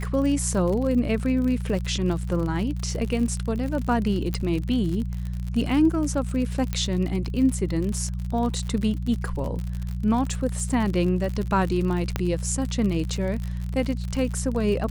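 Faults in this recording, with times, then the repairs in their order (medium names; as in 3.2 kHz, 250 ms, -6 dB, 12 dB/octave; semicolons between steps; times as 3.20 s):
crackle 58 per s -29 dBFS
hum 60 Hz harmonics 3 -29 dBFS
4.34 s: pop -14 dBFS
6.73 s: pop -13 dBFS
12.16 s: pop -10 dBFS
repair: de-click; de-hum 60 Hz, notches 3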